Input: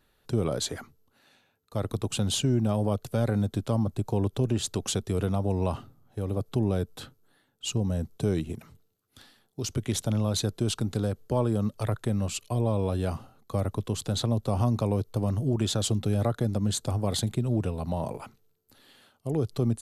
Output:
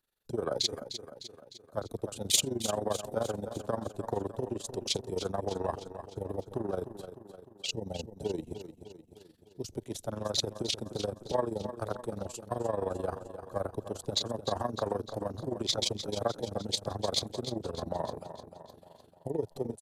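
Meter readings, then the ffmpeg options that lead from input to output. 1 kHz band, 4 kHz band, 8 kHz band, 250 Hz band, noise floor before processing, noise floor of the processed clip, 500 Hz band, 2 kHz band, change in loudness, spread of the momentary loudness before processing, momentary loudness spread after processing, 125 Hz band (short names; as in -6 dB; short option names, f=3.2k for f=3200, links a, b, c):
-1.0 dB, +1.5 dB, -1.5 dB, -10.0 dB, -70 dBFS, -60 dBFS, -2.0 dB, -3.5 dB, -5.5 dB, 8 LU, 13 LU, -14.5 dB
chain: -filter_complex "[0:a]afwtdn=0.0158,bass=f=250:g=-4,treble=f=4k:g=8,acrossover=split=360[a][b];[a]acompressor=threshold=-39dB:ratio=12[c];[c][b]amix=inputs=2:normalize=0,tremolo=f=23:d=0.788,aecho=1:1:303|606|909|1212|1515|1818:0.282|0.152|0.0822|0.0444|0.024|0.0129,volume=3dB"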